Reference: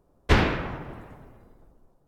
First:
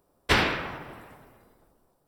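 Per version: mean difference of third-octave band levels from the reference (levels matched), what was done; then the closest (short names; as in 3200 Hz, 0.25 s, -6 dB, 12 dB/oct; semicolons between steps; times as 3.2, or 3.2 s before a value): 4.5 dB: tilt +2.5 dB/oct; notch 6600 Hz, Q 6.8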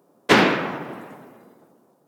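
3.0 dB: HPF 180 Hz 24 dB/oct; high shelf 7900 Hz +5.5 dB; gain +7.5 dB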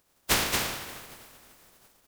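12.5 dB: spectral contrast lowered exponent 0.22; on a send: echo 0.228 s -4 dB; on the sum: gain -6 dB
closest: second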